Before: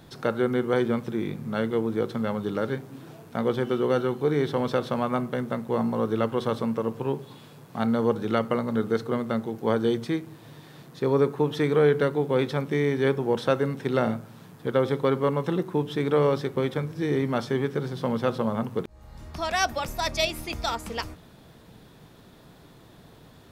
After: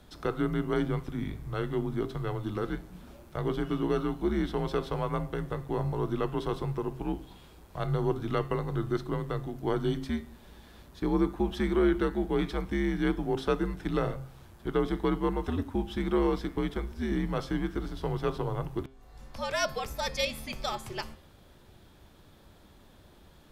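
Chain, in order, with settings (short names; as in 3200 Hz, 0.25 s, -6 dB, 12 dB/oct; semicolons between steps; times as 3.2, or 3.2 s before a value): frequency shift -90 Hz; de-hum 133 Hz, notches 40; gain -4.5 dB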